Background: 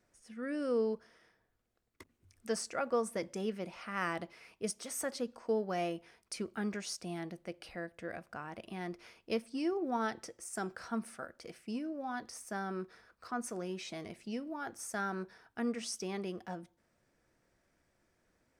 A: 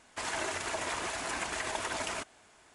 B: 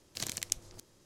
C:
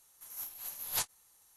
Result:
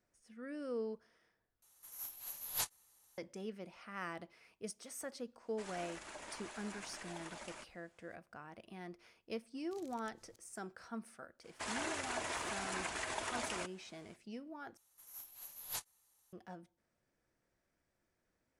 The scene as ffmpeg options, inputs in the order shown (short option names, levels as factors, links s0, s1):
-filter_complex "[3:a]asplit=2[s0][s1];[1:a]asplit=2[s2][s3];[0:a]volume=0.398[s4];[s2]afreqshift=-40[s5];[2:a]acompressor=threshold=0.00891:ratio=3:attack=2:release=61:knee=1:detection=rms[s6];[s4]asplit=3[s7][s8][s9];[s7]atrim=end=1.624[s10];[s0]atrim=end=1.56,asetpts=PTS-STARTPTS,volume=0.631[s11];[s8]atrim=start=3.176:end=14.774[s12];[s1]atrim=end=1.56,asetpts=PTS-STARTPTS,volume=0.355[s13];[s9]atrim=start=16.326[s14];[s5]atrim=end=2.74,asetpts=PTS-STARTPTS,volume=0.178,afade=t=in:d=0.004:c=hsin,afade=t=out:st=2.736:d=0.004:c=hsin,adelay=238581S[s15];[s6]atrim=end=1.05,asetpts=PTS-STARTPTS,volume=0.168,afade=t=in:d=0.004:c=hsin,afade=t=out:st=1.046:d=0.004:c=hsin,adelay=9560[s16];[s3]atrim=end=2.74,asetpts=PTS-STARTPTS,volume=0.531,afade=t=in:d=0.02,afade=t=out:st=2.72:d=0.02,adelay=11430[s17];[s10][s11]acrossfade=d=0.004:c1=hsin:c2=hsin[s18];[s18][s12]acrossfade=d=0.004:c1=hsin:c2=hsin[s19];[s19][s13]acrossfade=d=0.004:c1=hsin:c2=hsin[s20];[s20][s14]acrossfade=d=0.004:c1=hsin:c2=hsin[s21];[s21][s15][s16][s17]amix=inputs=4:normalize=0"